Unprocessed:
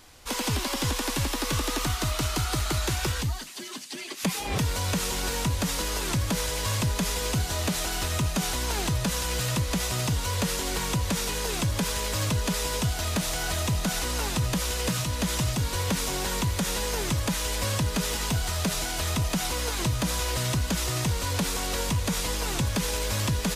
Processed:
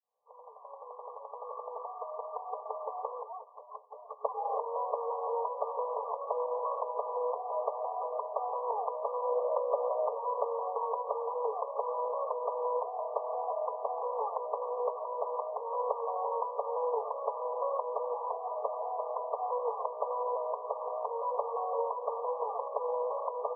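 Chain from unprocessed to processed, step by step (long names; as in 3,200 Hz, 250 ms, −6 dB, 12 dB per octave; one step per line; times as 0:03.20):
fade in at the beginning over 3.96 s
0:09.23–0:10.19: parametric band 560 Hz +10 dB 0.32 octaves
brick-wall band-pass 430–1,200 Hz
level +3 dB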